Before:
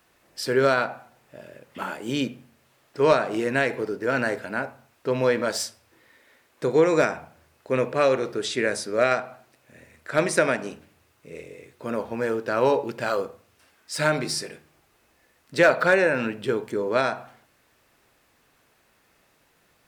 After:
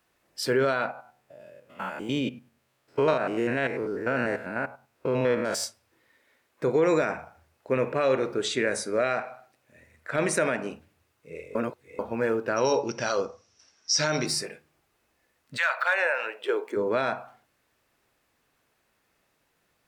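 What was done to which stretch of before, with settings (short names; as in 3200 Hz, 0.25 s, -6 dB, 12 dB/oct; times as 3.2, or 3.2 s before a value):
0.91–5.64 stepped spectrum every 0.1 s
7.03–10.55 feedback echo 79 ms, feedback 53%, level -21 dB
11.55–11.99 reverse
12.56–14.26 synth low-pass 5700 Hz, resonance Q 14
15.56–16.75 HPF 1100 Hz -> 290 Hz 24 dB/oct
whole clip: limiter -14 dBFS; spectral noise reduction 8 dB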